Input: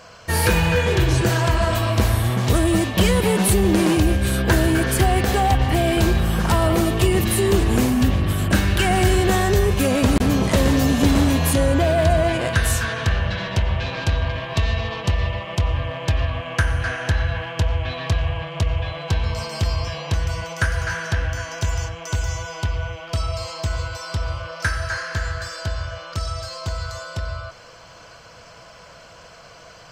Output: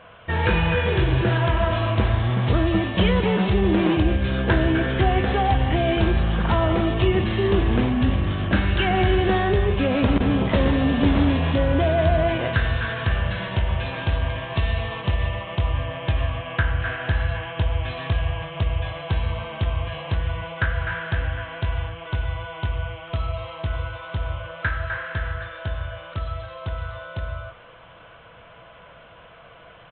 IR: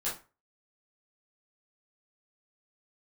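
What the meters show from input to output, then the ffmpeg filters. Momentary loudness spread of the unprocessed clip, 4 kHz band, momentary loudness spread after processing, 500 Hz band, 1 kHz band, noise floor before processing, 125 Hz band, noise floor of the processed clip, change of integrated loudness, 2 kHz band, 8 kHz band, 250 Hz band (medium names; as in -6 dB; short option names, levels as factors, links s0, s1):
10 LU, -4.0 dB, 11 LU, -2.0 dB, -2.0 dB, -45 dBFS, -2.0 dB, -47 dBFS, -2.5 dB, -2.0 dB, under -40 dB, -2.0 dB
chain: -filter_complex "[0:a]asplit=2[s0][s1];[1:a]atrim=start_sample=2205,asetrate=35721,aresample=44100[s2];[s1][s2]afir=irnorm=-1:irlink=0,volume=0.15[s3];[s0][s3]amix=inputs=2:normalize=0,aresample=8000,aresample=44100,volume=0.708"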